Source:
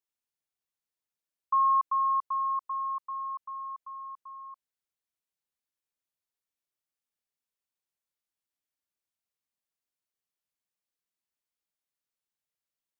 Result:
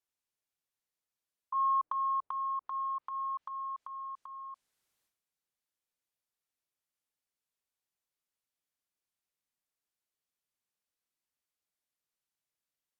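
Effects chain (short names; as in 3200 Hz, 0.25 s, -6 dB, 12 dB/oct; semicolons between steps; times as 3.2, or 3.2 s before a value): treble ducked by the level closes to 910 Hz, closed at -29 dBFS; transient shaper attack -8 dB, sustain +11 dB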